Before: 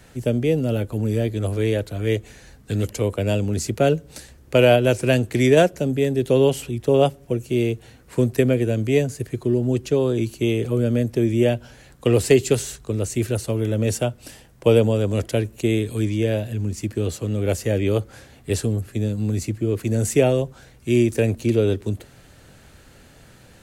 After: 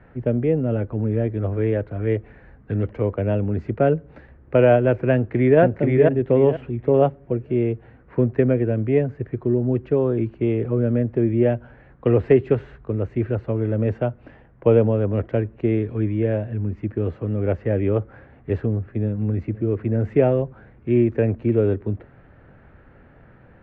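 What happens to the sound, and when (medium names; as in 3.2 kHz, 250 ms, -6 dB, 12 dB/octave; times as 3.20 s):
5.14–5.60 s: echo throw 480 ms, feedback 25%, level -2 dB
18.76–19.16 s: echo throw 260 ms, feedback 75%, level -17.5 dB
whole clip: low-pass 1.9 kHz 24 dB/octave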